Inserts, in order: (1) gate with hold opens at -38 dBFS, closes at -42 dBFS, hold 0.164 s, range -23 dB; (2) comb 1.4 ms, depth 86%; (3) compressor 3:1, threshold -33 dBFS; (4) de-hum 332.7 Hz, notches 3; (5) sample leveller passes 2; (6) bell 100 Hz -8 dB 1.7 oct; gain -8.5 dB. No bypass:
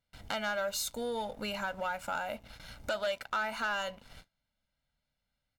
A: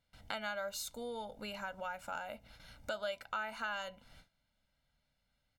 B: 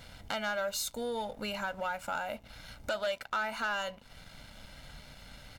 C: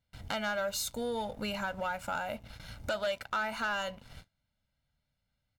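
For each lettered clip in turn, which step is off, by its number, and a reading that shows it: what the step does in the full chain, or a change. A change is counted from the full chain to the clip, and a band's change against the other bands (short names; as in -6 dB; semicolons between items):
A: 5, crest factor change +6.0 dB; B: 1, momentary loudness spread change +10 LU; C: 6, 125 Hz band +5.0 dB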